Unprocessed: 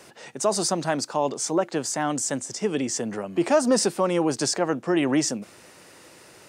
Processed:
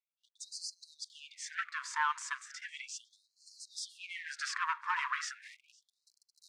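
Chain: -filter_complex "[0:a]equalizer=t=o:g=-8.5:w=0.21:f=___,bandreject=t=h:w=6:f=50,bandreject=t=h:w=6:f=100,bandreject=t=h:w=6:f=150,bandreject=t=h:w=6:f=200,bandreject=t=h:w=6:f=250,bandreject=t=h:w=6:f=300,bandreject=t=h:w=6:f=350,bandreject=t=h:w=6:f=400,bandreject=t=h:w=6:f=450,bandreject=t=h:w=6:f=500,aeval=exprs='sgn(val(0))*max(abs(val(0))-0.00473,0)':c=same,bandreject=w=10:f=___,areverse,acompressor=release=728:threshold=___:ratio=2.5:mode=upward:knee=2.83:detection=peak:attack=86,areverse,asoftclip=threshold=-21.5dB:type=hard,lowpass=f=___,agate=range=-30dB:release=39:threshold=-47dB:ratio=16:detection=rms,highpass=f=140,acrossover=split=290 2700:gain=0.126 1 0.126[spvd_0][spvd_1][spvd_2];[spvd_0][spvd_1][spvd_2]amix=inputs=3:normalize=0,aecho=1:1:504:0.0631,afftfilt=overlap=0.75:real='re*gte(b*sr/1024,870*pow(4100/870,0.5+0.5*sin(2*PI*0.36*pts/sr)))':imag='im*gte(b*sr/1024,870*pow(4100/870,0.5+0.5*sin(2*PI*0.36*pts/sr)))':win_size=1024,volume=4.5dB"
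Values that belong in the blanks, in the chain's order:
2500, 3000, -37dB, 7100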